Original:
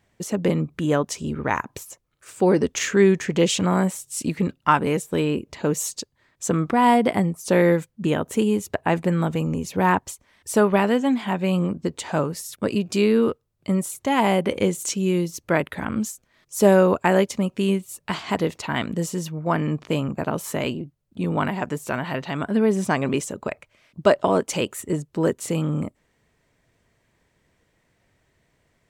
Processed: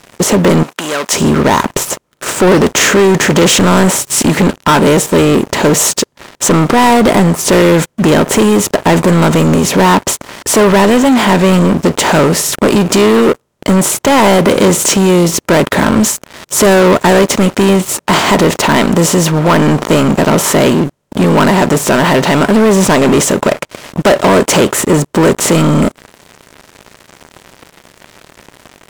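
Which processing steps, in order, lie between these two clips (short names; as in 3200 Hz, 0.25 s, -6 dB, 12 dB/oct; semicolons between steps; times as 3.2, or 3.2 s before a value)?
per-bin compression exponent 0.6; sample leveller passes 5; 0.63–1.13 HPF 1400 Hz 6 dB/oct; gain -3 dB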